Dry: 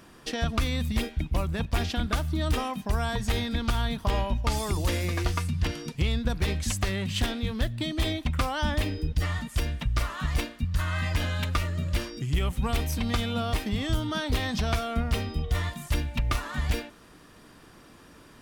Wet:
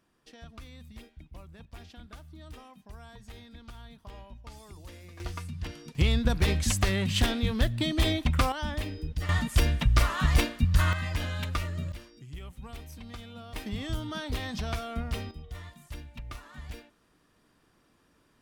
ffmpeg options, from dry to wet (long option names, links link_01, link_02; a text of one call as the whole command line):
ffmpeg -i in.wav -af "asetnsamples=nb_out_samples=441:pad=0,asendcmd='5.2 volume volume -9.5dB;5.95 volume volume 2dB;8.52 volume volume -6dB;9.29 volume volume 4.5dB;10.93 volume volume -4dB;11.92 volume volume -16dB;13.56 volume volume -6dB;15.31 volume volume -14.5dB',volume=-20dB" out.wav